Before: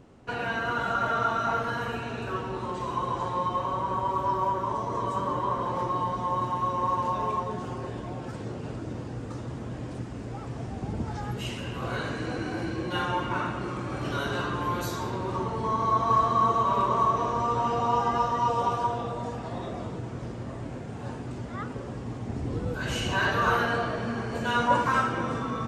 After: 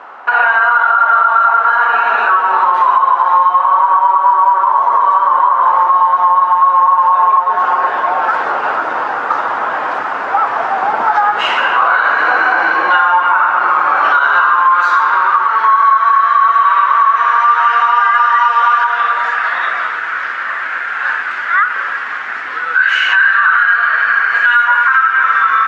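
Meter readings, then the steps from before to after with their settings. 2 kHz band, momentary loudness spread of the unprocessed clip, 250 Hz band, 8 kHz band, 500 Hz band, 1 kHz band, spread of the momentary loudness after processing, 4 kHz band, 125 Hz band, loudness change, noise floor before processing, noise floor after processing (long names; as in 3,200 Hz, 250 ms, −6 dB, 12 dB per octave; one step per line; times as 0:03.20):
+23.0 dB, 13 LU, −5.5 dB, can't be measured, +6.0 dB, +18.5 dB, 8 LU, +12.5 dB, below −20 dB, +18.0 dB, −38 dBFS, −20 dBFS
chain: high-pass filter 110 Hz
high-pass filter sweep 850 Hz → 1,700 Hz, 0:13.95–0:16.27
speech leveller within 4 dB 2 s
parametric band 1,400 Hz +12.5 dB 0.89 octaves
downward compressor 4 to 1, threshold −24 dBFS, peak gain reduction 15.5 dB
low-pass filter 3,000 Hz 12 dB per octave
boost into a limiter +17.5 dB
level −1 dB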